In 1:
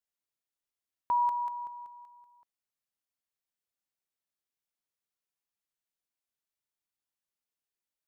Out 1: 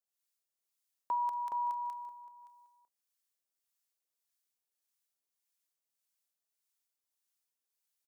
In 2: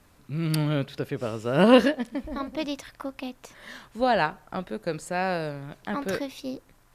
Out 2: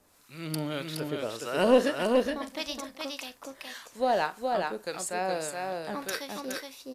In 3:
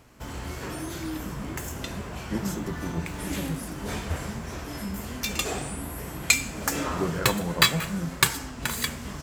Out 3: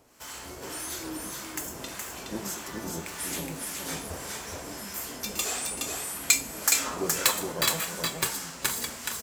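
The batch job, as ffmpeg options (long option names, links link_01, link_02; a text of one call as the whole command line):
ffmpeg -i in.wav -filter_complex "[0:a]bass=frequency=250:gain=-12,treble=frequency=4000:gain=8,asoftclip=type=tanh:threshold=-7dB,acrossover=split=860[link_01][link_02];[link_01]aeval=exprs='val(0)*(1-0.7/2+0.7/2*cos(2*PI*1.7*n/s))':channel_layout=same[link_03];[link_02]aeval=exprs='val(0)*(1-0.7/2-0.7/2*cos(2*PI*1.7*n/s))':channel_layout=same[link_04];[link_03][link_04]amix=inputs=2:normalize=0,asplit=2[link_05][link_06];[link_06]aecho=0:1:44|419|449:0.15|0.668|0.133[link_07];[link_05][link_07]amix=inputs=2:normalize=0" out.wav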